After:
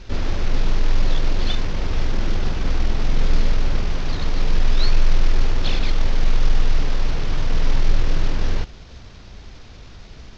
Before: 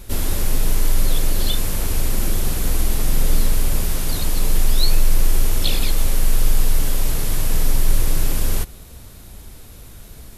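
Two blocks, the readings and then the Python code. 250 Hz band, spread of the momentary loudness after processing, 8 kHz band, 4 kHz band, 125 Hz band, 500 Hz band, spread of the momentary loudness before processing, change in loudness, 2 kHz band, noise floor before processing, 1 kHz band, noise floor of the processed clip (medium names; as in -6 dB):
-0.5 dB, 20 LU, -16.0 dB, -3.5 dB, -0.5 dB, 0.0 dB, 20 LU, -2.0 dB, +1.0 dB, -40 dBFS, +1.0 dB, -40 dBFS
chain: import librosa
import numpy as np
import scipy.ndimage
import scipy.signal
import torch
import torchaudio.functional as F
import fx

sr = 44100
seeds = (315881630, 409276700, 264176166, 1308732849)

y = fx.cvsd(x, sr, bps=32000)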